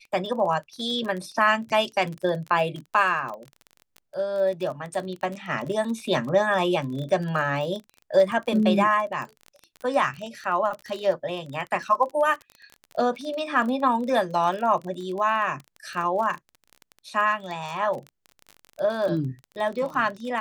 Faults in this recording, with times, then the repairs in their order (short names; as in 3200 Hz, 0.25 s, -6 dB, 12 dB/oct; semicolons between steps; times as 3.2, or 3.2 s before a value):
crackle 27/s -31 dBFS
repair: de-click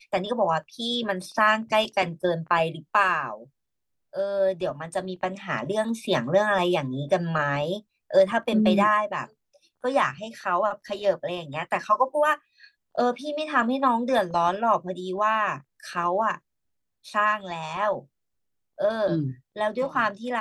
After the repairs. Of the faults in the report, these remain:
none